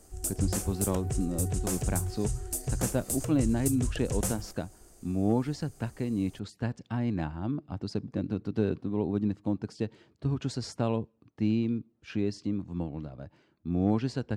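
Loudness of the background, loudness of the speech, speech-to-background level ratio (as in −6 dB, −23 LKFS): −33.0 LKFS, −32.0 LKFS, 1.0 dB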